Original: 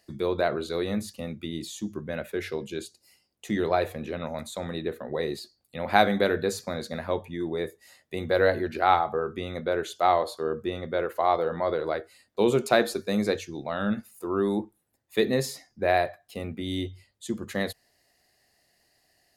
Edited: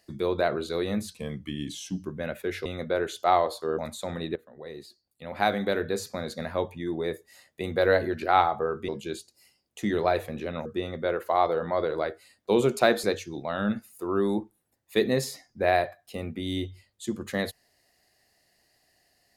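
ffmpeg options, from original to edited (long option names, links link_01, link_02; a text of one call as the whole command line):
ffmpeg -i in.wav -filter_complex "[0:a]asplit=9[link_01][link_02][link_03][link_04][link_05][link_06][link_07][link_08][link_09];[link_01]atrim=end=1.084[link_10];[link_02]atrim=start=1.08:end=1.94,asetpts=PTS-STARTPTS,asetrate=39249,aresample=44100,atrim=end_sample=42613,asetpts=PTS-STARTPTS[link_11];[link_03]atrim=start=1.936:end=2.552[link_12];[link_04]atrim=start=9.418:end=10.552[link_13];[link_05]atrim=start=4.318:end=4.89,asetpts=PTS-STARTPTS,afade=type=out:start_time=0.568:duration=0.004:curve=hsin:silence=0.125893[link_14];[link_06]atrim=start=4.89:end=9.422,asetpts=PTS-STARTPTS,afade=type=in:duration=2.13:silence=0.125893[link_15];[link_07]atrim=start=2.548:end=4.322[link_16];[link_08]atrim=start=10.548:end=12.932[link_17];[link_09]atrim=start=13.248[link_18];[link_10][link_11]acrossfade=duration=0.004:curve1=hsin:curve2=hsin[link_19];[link_19][link_12]acrossfade=duration=0.004:curve1=hsin:curve2=hsin[link_20];[link_20][link_13]acrossfade=duration=0.004:curve1=hsin:curve2=hsin[link_21];[link_14][link_15]concat=n=2:v=0:a=1[link_22];[link_21][link_22]acrossfade=duration=0.004:curve1=hsin:curve2=hsin[link_23];[link_23][link_16]acrossfade=duration=0.004:curve1=hsin:curve2=hsin[link_24];[link_24][link_17]acrossfade=duration=0.004:curve1=hsin:curve2=hsin[link_25];[link_25][link_18]acrossfade=duration=0.004:curve1=hsin:curve2=hsin" out.wav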